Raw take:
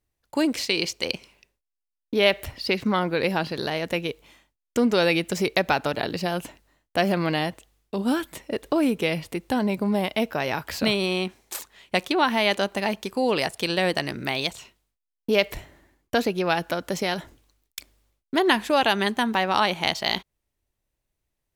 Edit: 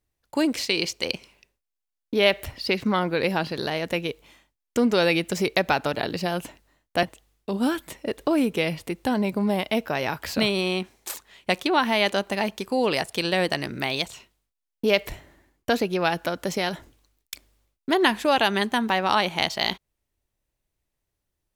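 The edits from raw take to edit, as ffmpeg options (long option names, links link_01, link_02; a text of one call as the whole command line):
ffmpeg -i in.wav -filter_complex "[0:a]asplit=2[link_01][link_02];[link_01]atrim=end=7.032[link_03];[link_02]atrim=start=7.478[link_04];[link_03][link_04]acrossfade=duration=0.004:curve1=hsin:curve2=hsin" out.wav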